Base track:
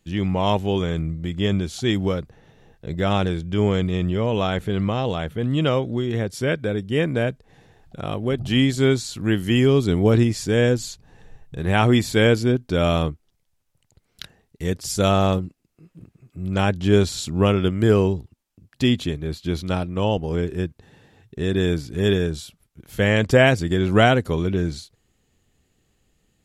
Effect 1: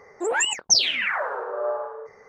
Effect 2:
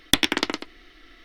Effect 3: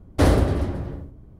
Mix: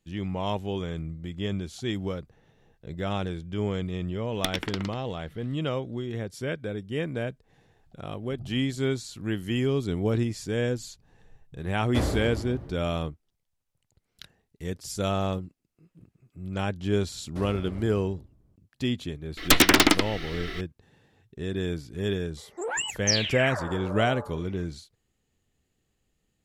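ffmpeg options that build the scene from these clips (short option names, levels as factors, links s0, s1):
-filter_complex "[2:a]asplit=2[s0][s1];[3:a]asplit=2[s2][s3];[0:a]volume=0.355[s4];[s3]alimiter=limit=0.224:level=0:latency=1:release=112[s5];[s1]aeval=exprs='0.891*sin(PI/2*8.91*val(0)/0.891)':c=same[s6];[s0]atrim=end=1.24,asetpts=PTS-STARTPTS,volume=0.299,afade=t=in:d=0.004:c=hsin,afade=t=out:st=1.236:d=0.004:c=hsin,adelay=4310[s7];[s2]atrim=end=1.39,asetpts=PTS-STARTPTS,volume=0.299,afade=t=in:d=0.004:c=hsin,afade=t=out:st=1.386:d=0.004:c=hsin,adelay=11760[s8];[s5]atrim=end=1.39,asetpts=PTS-STARTPTS,volume=0.158,afade=t=in:d=0.004:c=hsin,afade=t=out:st=1.386:d=0.004:c=hsin,adelay=17170[s9];[s6]atrim=end=1.24,asetpts=PTS-STARTPTS,volume=0.376,afade=t=in:d=0.004:c=hsin,afade=t=out:st=1.236:d=0.004:c=hsin,adelay=19370[s10];[1:a]atrim=end=2.28,asetpts=PTS-STARTPTS,volume=0.447,afade=t=in:d=0.004:c=hsin,afade=t=out:st=2.276:d=0.004:c=hsin,adelay=22370[s11];[s4][s7][s8][s9][s10][s11]amix=inputs=6:normalize=0"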